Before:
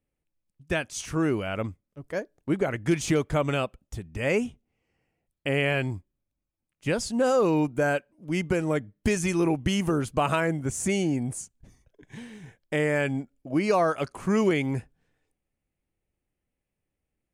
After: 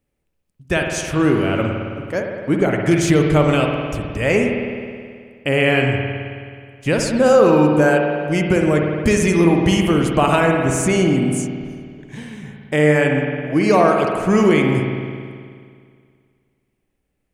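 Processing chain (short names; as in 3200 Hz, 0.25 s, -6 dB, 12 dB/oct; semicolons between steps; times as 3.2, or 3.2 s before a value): spring tank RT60 2.1 s, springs 53 ms, chirp 45 ms, DRR 1.5 dB; gain +7.5 dB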